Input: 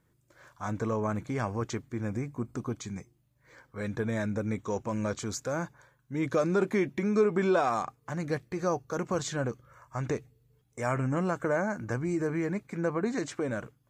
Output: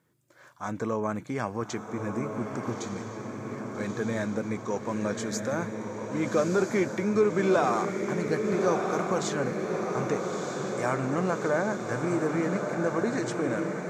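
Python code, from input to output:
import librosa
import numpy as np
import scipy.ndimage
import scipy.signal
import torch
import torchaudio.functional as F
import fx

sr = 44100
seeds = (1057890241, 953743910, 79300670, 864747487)

p1 = scipy.signal.sosfilt(scipy.signal.butter(2, 150.0, 'highpass', fs=sr, output='sos'), x)
p2 = p1 + fx.echo_diffused(p1, sr, ms=1264, feedback_pct=66, wet_db=-4.5, dry=0)
y = p2 * 10.0 ** (1.5 / 20.0)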